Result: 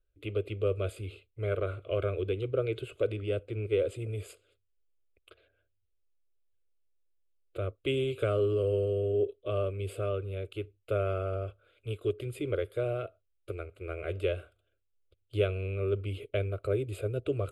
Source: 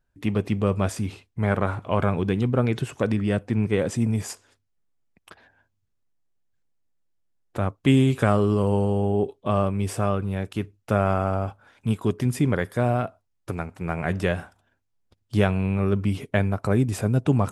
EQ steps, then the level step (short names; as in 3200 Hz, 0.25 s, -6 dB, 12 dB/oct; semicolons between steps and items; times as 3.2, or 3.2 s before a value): high shelf 5600 Hz -11.5 dB; fixed phaser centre 400 Hz, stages 4; fixed phaser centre 1200 Hz, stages 8; -1.5 dB